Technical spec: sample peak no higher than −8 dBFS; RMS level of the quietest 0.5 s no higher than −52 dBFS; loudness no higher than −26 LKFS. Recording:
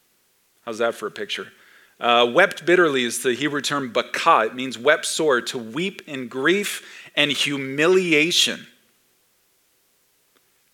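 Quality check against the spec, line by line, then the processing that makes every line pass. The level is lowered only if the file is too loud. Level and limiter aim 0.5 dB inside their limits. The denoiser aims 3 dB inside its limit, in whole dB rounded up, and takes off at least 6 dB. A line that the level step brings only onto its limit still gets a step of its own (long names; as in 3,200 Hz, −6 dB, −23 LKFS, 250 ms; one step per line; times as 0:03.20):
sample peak −2.0 dBFS: out of spec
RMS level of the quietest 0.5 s −64 dBFS: in spec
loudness −20.0 LKFS: out of spec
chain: level −6.5 dB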